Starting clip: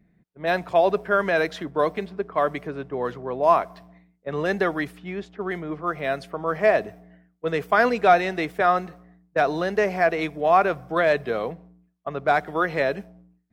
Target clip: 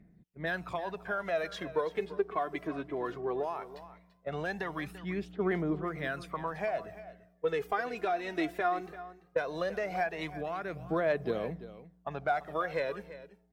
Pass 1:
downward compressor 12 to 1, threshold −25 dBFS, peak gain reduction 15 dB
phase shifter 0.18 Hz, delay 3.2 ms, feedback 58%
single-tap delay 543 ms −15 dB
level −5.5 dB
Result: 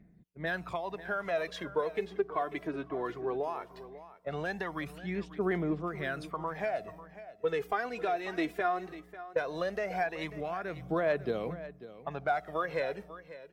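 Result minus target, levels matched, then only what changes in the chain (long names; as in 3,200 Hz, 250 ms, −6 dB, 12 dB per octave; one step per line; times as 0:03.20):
echo 204 ms late
change: single-tap delay 339 ms −15 dB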